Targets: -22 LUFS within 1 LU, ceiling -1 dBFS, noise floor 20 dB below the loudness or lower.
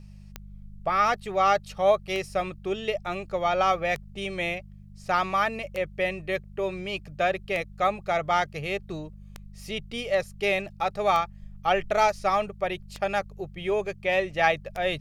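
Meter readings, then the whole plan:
clicks found 9; hum 50 Hz; highest harmonic 200 Hz; hum level -43 dBFS; loudness -27.0 LUFS; peak level -8.5 dBFS; loudness target -22.0 LUFS
-> de-click; de-hum 50 Hz, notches 4; trim +5 dB

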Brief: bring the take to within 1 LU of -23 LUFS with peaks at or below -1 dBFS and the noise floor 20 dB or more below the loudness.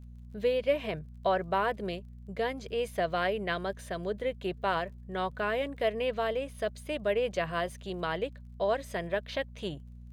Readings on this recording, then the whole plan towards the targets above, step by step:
tick rate 26 per s; hum 60 Hz; highest harmonic 240 Hz; hum level -45 dBFS; loudness -32.5 LUFS; peak level -15.5 dBFS; loudness target -23.0 LUFS
-> de-click; de-hum 60 Hz, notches 4; trim +9.5 dB

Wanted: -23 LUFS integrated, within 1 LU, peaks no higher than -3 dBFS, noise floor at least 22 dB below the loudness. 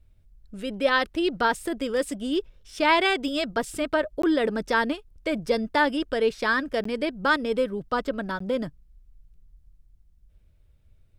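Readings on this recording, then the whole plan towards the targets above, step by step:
dropouts 3; longest dropout 14 ms; loudness -25.5 LUFS; peak level -7.5 dBFS; loudness target -23.0 LUFS
-> interpolate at 4.22/6.84/8.39 s, 14 ms; trim +2.5 dB

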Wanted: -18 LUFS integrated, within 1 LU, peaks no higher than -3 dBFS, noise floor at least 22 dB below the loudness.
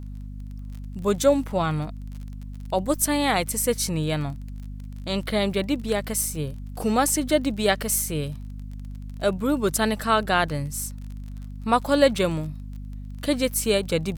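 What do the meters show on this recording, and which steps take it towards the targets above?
tick rate 28 per s; hum 50 Hz; highest harmonic 250 Hz; hum level -33 dBFS; loudness -24.0 LUFS; peak level -5.5 dBFS; loudness target -18.0 LUFS
-> de-click; de-hum 50 Hz, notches 5; trim +6 dB; peak limiter -3 dBFS

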